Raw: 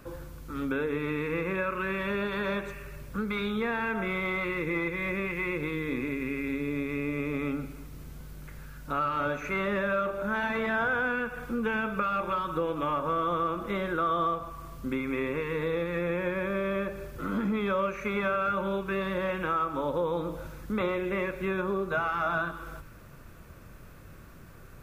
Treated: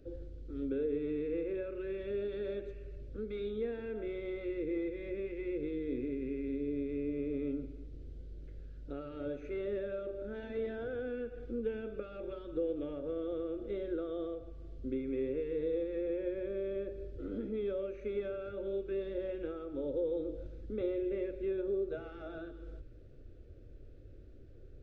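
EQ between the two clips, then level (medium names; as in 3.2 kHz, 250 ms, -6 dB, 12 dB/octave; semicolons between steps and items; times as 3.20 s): tape spacing loss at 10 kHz 38 dB; high-order bell 1.3 kHz -10 dB 2.3 oct; static phaser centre 430 Hz, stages 4; 0.0 dB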